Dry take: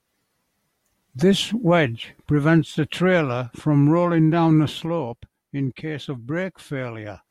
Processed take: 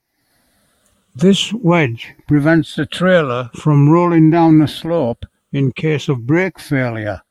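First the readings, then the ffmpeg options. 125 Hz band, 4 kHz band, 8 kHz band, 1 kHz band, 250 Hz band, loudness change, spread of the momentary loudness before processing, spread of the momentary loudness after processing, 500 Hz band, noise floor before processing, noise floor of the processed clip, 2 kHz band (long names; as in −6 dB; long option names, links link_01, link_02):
+6.5 dB, +6.0 dB, can't be measured, +7.0 dB, +7.0 dB, +6.5 dB, 13 LU, 10 LU, +6.5 dB, −76 dBFS, −68 dBFS, +7.0 dB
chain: -af "afftfilt=real='re*pow(10,11/40*sin(2*PI*(0.75*log(max(b,1)*sr/1024/100)/log(2)-(-0.46)*(pts-256)/sr)))':imag='im*pow(10,11/40*sin(2*PI*(0.75*log(max(b,1)*sr/1024/100)/log(2)-(-0.46)*(pts-256)/sr)))':win_size=1024:overlap=0.75,dynaudnorm=framelen=180:gausssize=3:maxgain=12.5dB,volume=-1dB"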